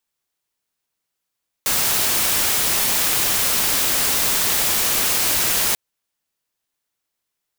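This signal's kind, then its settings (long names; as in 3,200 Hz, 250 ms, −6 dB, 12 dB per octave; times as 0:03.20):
noise white, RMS −19 dBFS 4.09 s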